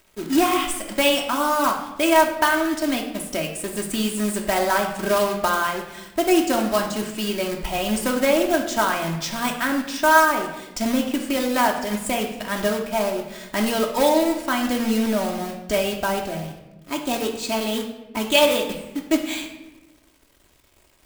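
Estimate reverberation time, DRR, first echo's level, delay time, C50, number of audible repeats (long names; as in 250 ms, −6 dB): 1.0 s, 0.5 dB, no echo audible, no echo audible, 6.5 dB, no echo audible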